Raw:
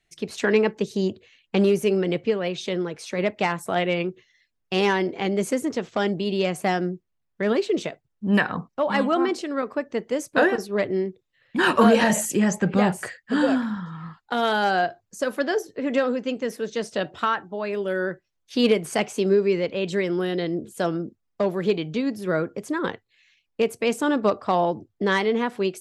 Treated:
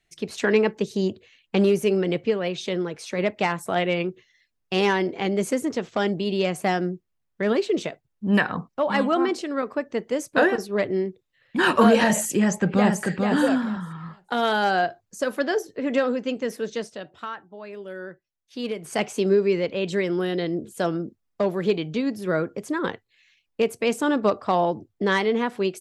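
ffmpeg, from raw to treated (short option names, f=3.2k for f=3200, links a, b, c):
-filter_complex "[0:a]asplit=2[a][b];[b]afade=t=in:st=12.4:d=0.01,afade=t=out:st=13.04:d=0.01,aecho=0:1:440|880|1320:0.630957|0.0946436|0.0141965[c];[a][c]amix=inputs=2:normalize=0,asplit=3[d][e][f];[d]atrim=end=16.98,asetpts=PTS-STARTPTS,afade=t=out:st=16.71:d=0.27:silence=0.298538[g];[e]atrim=start=16.98:end=18.77,asetpts=PTS-STARTPTS,volume=-10.5dB[h];[f]atrim=start=18.77,asetpts=PTS-STARTPTS,afade=t=in:d=0.27:silence=0.298538[i];[g][h][i]concat=n=3:v=0:a=1"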